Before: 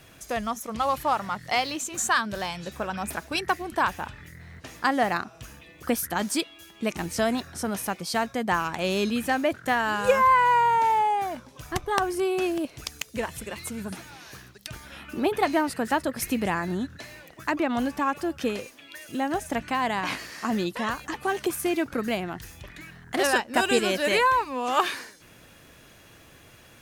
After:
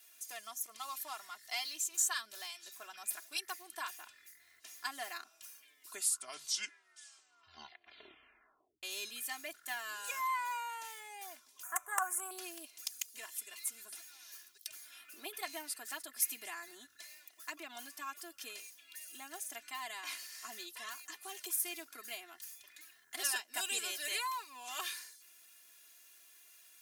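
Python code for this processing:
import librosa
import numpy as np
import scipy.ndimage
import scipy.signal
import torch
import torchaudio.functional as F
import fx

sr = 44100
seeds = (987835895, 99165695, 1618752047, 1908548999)

y = fx.curve_eq(x, sr, hz=(120.0, 380.0, 550.0, 1400.0, 2600.0, 4600.0, 7100.0, 15000.0), db=(0, -6, 7, 15, -4, -23, 8, 4), at=(11.63, 12.31))
y = fx.edit(y, sr, fx.tape_stop(start_s=5.35, length_s=3.48), tone=tone)
y = fx.highpass(y, sr, hz=150.0, slope=6)
y = np.diff(y, prepend=0.0)
y = y + 0.92 * np.pad(y, (int(2.9 * sr / 1000.0), 0))[:len(y)]
y = y * librosa.db_to_amplitude(-5.5)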